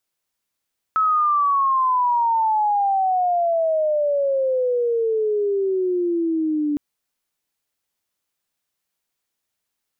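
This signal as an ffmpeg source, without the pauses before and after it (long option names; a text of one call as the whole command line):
ffmpeg -f lavfi -i "aevalsrc='pow(10,(-15-3.5*t/5.81)/20)*sin(2*PI*1300*5.81/log(290/1300)*(exp(log(290/1300)*t/5.81)-1))':duration=5.81:sample_rate=44100" out.wav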